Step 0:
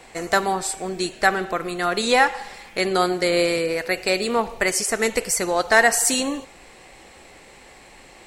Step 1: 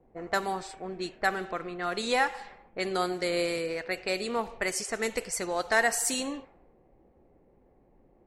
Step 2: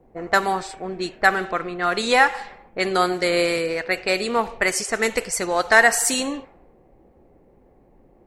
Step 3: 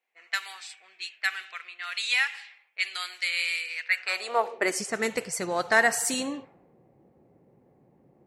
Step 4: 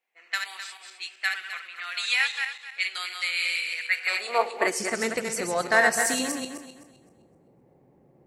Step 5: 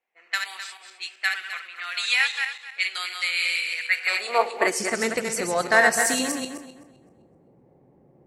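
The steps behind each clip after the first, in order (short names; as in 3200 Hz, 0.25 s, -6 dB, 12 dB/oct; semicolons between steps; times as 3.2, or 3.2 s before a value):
low-pass opened by the level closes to 370 Hz, open at -17.5 dBFS; gain -9 dB
dynamic EQ 1500 Hz, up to +4 dB, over -37 dBFS, Q 0.76; gain +7.5 dB
high-pass sweep 2500 Hz -> 130 Hz, 3.83–4.97; gain -7 dB
regenerating reverse delay 0.129 s, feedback 49%, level -4.5 dB
mismatched tape noise reduction decoder only; gain +2.5 dB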